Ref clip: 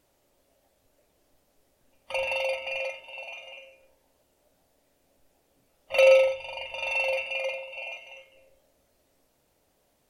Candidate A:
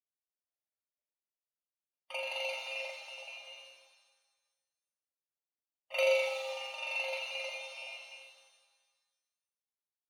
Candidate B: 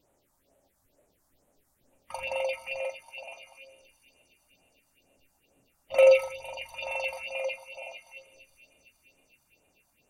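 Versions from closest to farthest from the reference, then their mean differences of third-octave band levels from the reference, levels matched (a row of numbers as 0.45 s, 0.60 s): B, A; 3.0 dB, 6.0 dB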